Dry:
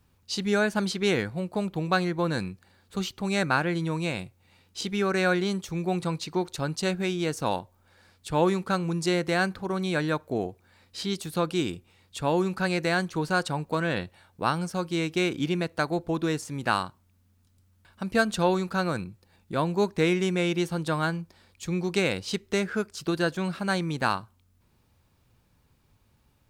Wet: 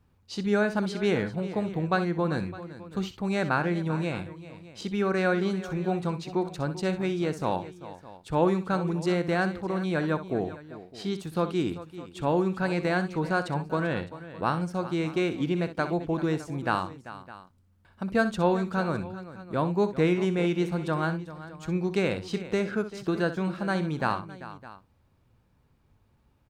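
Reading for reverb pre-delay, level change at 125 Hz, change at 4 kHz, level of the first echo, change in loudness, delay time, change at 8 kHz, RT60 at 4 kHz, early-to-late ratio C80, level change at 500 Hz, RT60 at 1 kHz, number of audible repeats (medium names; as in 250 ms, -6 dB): no reverb, +0.5 dB, -7.0 dB, -12.0 dB, -0.5 dB, 63 ms, -9.5 dB, no reverb, no reverb, 0.0 dB, no reverb, 3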